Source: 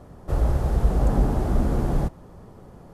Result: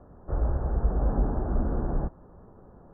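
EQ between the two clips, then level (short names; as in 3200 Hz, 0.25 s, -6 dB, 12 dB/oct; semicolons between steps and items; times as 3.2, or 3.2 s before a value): steep low-pass 1700 Hz 72 dB/oct; air absorption 270 m; bell 130 Hz -4.5 dB 1.1 oct; -4.0 dB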